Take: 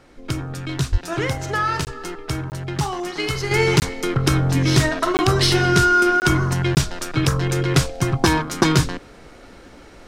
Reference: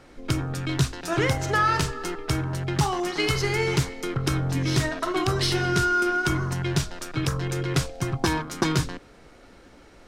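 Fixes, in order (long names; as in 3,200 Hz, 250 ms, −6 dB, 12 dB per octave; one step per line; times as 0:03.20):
high-pass at the plosives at 0:00.91
repair the gap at 0:01.85/0:02.50/0:03.80/0:05.17/0:06.20/0:06.75, 19 ms
level 0 dB, from 0:03.51 −7 dB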